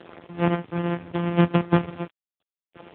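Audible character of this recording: a buzz of ramps at a fixed pitch in blocks of 256 samples; chopped level 0.73 Hz, depth 60%, duty 35%; a quantiser's noise floor 8-bit, dither none; AMR-NB

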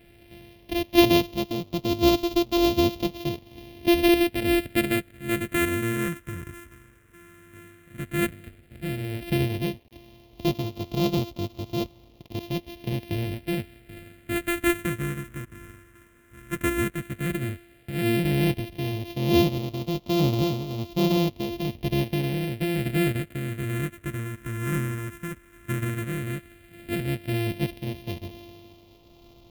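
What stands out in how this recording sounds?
a buzz of ramps at a fixed pitch in blocks of 128 samples; tremolo triangle 1.1 Hz, depth 50%; a quantiser's noise floor 10-bit, dither none; phasing stages 4, 0.11 Hz, lowest notch 750–1600 Hz

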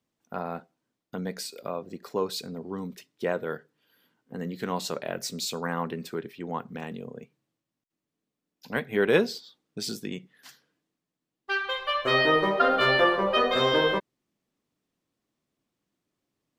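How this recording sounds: noise floor -87 dBFS; spectral tilt -4.0 dB/oct

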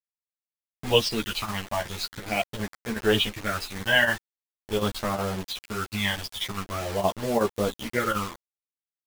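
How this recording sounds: phasing stages 12, 0.44 Hz, lowest notch 410–2800 Hz; a quantiser's noise floor 6-bit, dither none; chopped level 2.7 Hz, depth 60%, duty 90%; a shimmering, thickened sound

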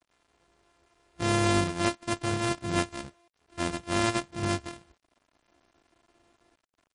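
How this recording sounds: a buzz of ramps at a fixed pitch in blocks of 128 samples; tremolo saw up 0.61 Hz, depth 45%; a quantiser's noise floor 12-bit, dither none; MP3

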